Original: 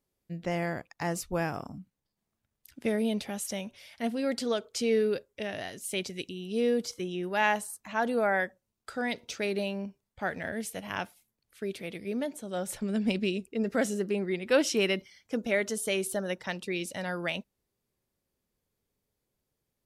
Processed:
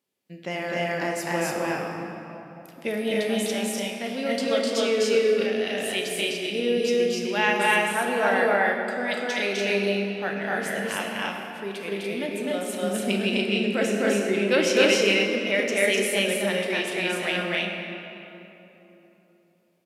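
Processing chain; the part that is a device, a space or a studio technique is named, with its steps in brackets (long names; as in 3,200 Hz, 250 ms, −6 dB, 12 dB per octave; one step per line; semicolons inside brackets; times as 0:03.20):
stadium PA (high-pass filter 200 Hz 12 dB per octave; parametric band 2,800 Hz +6.5 dB 1 octave; loudspeakers that aren't time-aligned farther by 87 metres −1 dB, 99 metres −2 dB; convolution reverb RT60 3.4 s, pre-delay 13 ms, DRR 2 dB)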